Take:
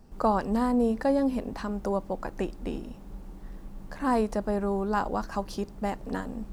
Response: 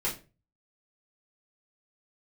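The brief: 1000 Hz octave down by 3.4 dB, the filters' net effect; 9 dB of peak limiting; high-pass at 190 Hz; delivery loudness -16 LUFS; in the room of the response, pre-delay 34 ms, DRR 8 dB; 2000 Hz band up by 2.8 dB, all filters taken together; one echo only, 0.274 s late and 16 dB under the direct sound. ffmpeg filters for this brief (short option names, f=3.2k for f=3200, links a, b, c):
-filter_complex "[0:a]highpass=190,equalizer=f=1k:t=o:g=-5.5,equalizer=f=2k:t=o:g=6,alimiter=limit=-23dB:level=0:latency=1,aecho=1:1:274:0.158,asplit=2[a][b];[1:a]atrim=start_sample=2205,adelay=34[c];[b][c]afir=irnorm=-1:irlink=0,volume=-14.5dB[d];[a][d]amix=inputs=2:normalize=0,volume=17dB"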